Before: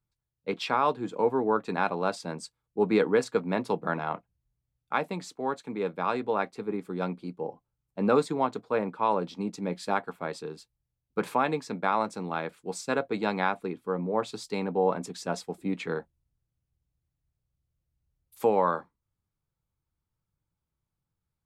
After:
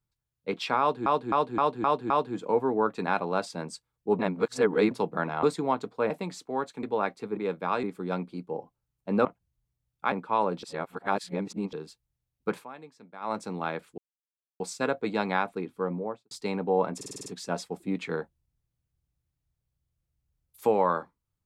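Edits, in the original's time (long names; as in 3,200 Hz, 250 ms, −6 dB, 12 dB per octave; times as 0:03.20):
0:00.80–0:01.06: repeat, 6 plays
0:02.89–0:03.61: reverse
0:04.13–0:05.00: swap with 0:08.15–0:08.82
0:05.73–0:06.19: move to 0:06.73
0:09.33–0:10.43: reverse
0:11.18–0:12.07: duck −18 dB, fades 0.17 s
0:12.68: splice in silence 0.62 s
0:13.94–0:14.39: fade out and dull
0:15.04: stutter 0.05 s, 7 plays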